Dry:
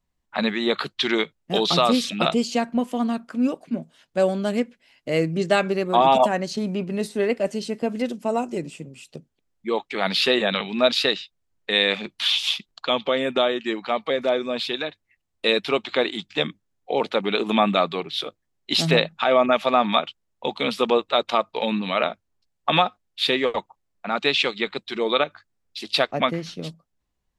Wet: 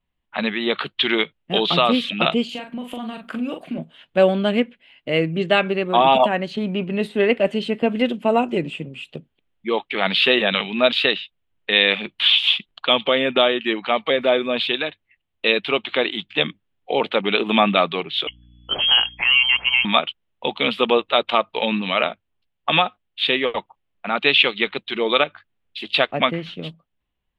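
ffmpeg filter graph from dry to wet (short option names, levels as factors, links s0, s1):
-filter_complex "[0:a]asettb=1/sr,asplit=3[s0][s1][s2];[s0]atrim=end=2.494[s3];[s1]atrim=start=2.49:end=3.78,asetpts=PTS-STARTPTS,afade=t=in:d=0.004:c=qsin,afade=t=out:st=1.286:d=0.004:c=qsin,aemphasis=mode=production:type=50kf,acompressor=threshold=0.0398:ratio=12:attack=3.2:release=140:knee=1:detection=peak,asplit=2[s4][s5];[s5]adelay=41,volume=0.501[s6];[s4][s6]amix=inputs=2:normalize=0,atrim=end_sample=56889[s7];[s2]atrim=start=3.776[s8];[s3][s7]acrossfade=d=0.004:c1=hsin:c2=qsin[s9];[s9][s8]acrossfade=d=0.004:c1=qsin:c2=hsin,asettb=1/sr,asplit=3[s10][s11][s12];[s10]atrim=end=18.274[s13];[s11]atrim=start=18.27:end=19.85,asetpts=PTS-STARTPTS,afade=t=in:d=0.004:c=qsin,afade=t=out:st=1.576:d=0.004:c=qsin,lowpass=f=2900:t=q:w=0.5098,lowpass=f=2900:t=q:w=0.6013,lowpass=f=2900:t=q:w=0.9,lowpass=f=2900:t=q:w=2.563,afreqshift=-3400,acompressor=threshold=0.02:ratio=1.5:attack=3.2:release=140:knee=1:detection=peak,aeval=exprs='val(0)+0.00282*(sin(2*PI*60*n/s)+sin(2*PI*2*60*n/s)/2+sin(2*PI*3*60*n/s)/3+sin(2*PI*4*60*n/s)/4+sin(2*PI*5*60*n/s)/5)':c=same[s14];[s12]atrim=start=19.846[s15];[s13][s14]acrossfade=d=0.004:c1=hsin:c2=qsin[s16];[s16][s15]acrossfade=d=0.004:c1=qsin:c2=hsin,highshelf=f=4200:t=q:w=3:g=-11,dynaudnorm=f=150:g=11:m=2.51,volume=0.891"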